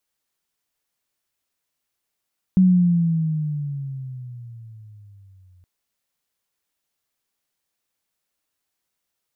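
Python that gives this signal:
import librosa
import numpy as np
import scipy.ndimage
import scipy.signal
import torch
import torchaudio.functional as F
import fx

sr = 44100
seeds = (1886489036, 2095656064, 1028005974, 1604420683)

y = fx.riser_tone(sr, length_s=3.07, level_db=-10.0, wave='sine', hz=188.0, rise_st=-13.0, swell_db=-40.0)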